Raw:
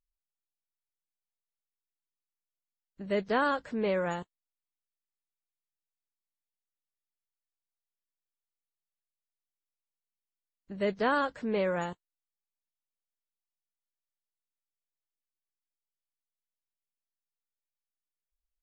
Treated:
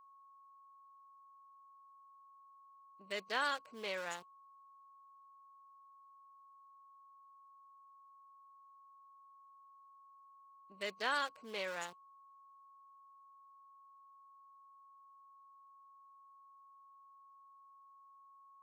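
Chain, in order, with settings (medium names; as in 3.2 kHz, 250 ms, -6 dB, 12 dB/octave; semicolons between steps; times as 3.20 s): local Wiener filter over 25 samples; differentiator; whistle 1.1 kHz -68 dBFS; trim +9 dB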